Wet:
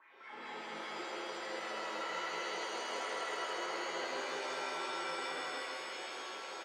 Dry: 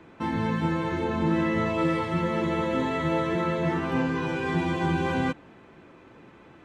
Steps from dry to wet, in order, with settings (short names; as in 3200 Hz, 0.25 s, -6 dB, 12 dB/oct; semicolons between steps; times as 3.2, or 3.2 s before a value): HPF 260 Hz 6 dB/oct; high shelf 4600 Hz +11.5 dB; reverse; compressor 16:1, threshold -41 dBFS, peak gain reduction 19 dB; reverse; wah 5 Hz 380–2300 Hz, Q 9.9; on a send: loudspeakers at several distances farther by 12 m -9 dB, 55 m -3 dB, 92 m -10 dB; on the sum: shimmer reverb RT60 3 s, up +7 st, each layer -2 dB, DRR -8 dB; gain +4 dB